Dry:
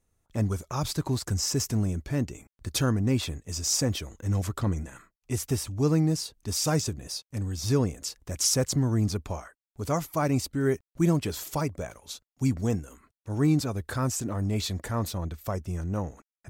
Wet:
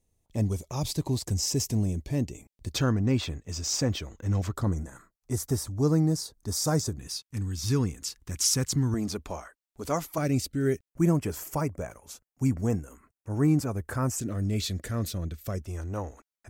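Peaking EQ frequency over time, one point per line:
peaking EQ -15 dB 0.66 oct
1.4 kHz
from 2.73 s 11 kHz
from 4.56 s 2.7 kHz
from 6.98 s 600 Hz
from 8.94 s 110 Hz
from 10.18 s 970 Hz
from 10.89 s 3.8 kHz
from 14.18 s 900 Hz
from 15.62 s 160 Hz

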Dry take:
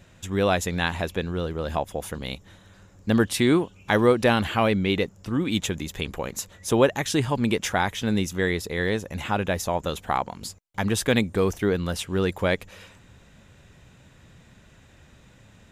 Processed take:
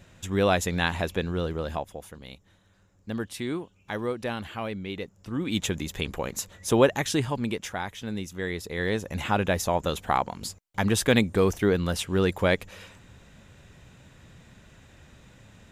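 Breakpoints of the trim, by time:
1.55 s -0.5 dB
2.10 s -11.5 dB
4.94 s -11.5 dB
5.69 s -0.5 dB
7.02 s -0.5 dB
7.72 s -9 dB
8.30 s -9 dB
9.13 s +0.5 dB

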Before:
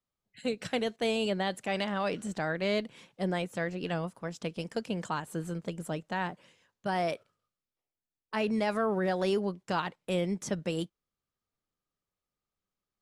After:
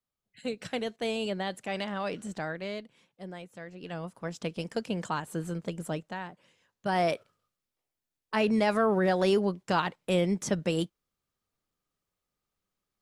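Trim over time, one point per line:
2.43 s -2 dB
2.91 s -11 dB
3.66 s -11 dB
4.27 s +1.5 dB
5.97 s +1.5 dB
6.26 s -7.5 dB
7.01 s +4 dB

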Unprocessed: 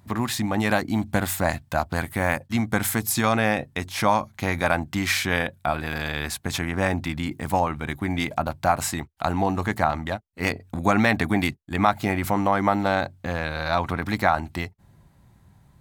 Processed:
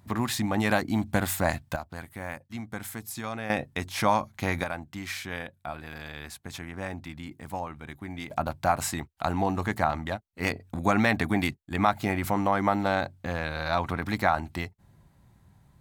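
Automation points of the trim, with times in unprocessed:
-2.5 dB
from 1.76 s -13.5 dB
from 3.50 s -3 dB
from 4.64 s -12 dB
from 8.30 s -3.5 dB

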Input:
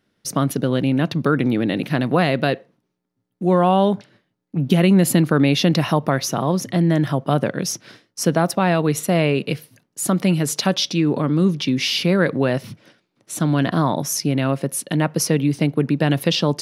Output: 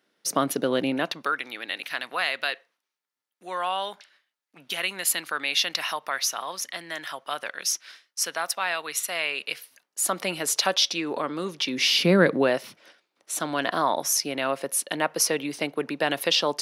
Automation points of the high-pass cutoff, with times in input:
0.90 s 370 Hz
1.39 s 1.4 kHz
9.28 s 1.4 kHz
10.20 s 620 Hz
11.62 s 620 Hz
12.17 s 160 Hz
12.65 s 570 Hz

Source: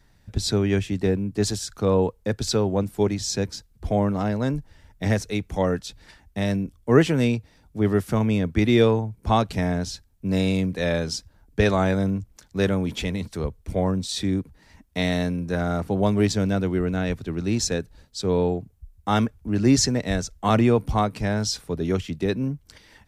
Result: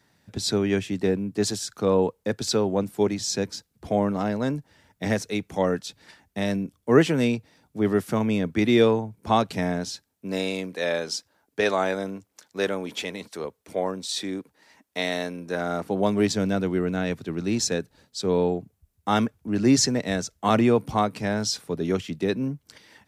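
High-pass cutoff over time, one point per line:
9.63 s 160 Hz
10.51 s 360 Hz
15.28 s 360 Hz
16.36 s 150 Hz

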